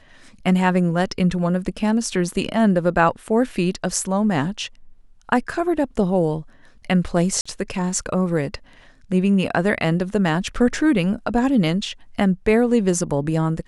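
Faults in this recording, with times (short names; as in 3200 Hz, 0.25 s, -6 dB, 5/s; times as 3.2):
7.41–7.46 gap 45 ms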